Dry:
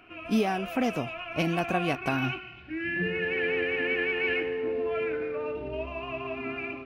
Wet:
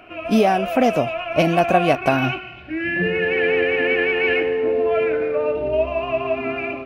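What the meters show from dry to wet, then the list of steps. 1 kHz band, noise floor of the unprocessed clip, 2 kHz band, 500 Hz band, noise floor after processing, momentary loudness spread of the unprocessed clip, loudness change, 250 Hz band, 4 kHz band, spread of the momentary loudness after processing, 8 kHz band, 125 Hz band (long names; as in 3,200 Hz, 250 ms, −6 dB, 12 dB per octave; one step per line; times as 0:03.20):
+12.0 dB, −45 dBFS, +7.5 dB, +12.0 dB, −36 dBFS, 8 LU, +10.0 dB, +8.0 dB, +7.5 dB, 7 LU, can't be measured, +7.5 dB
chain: parametric band 610 Hz +9.5 dB 0.59 octaves
level +7.5 dB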